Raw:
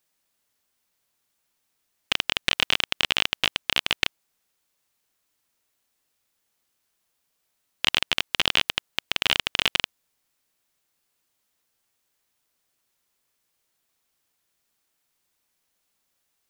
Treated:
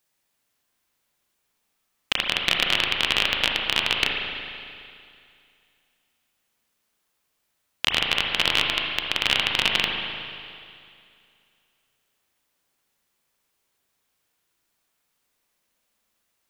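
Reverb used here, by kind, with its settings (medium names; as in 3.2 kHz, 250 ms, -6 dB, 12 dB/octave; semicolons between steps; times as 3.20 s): spring tank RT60 2.4 s, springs 37/60 ms, chirp 55 ms, DRR 0 dB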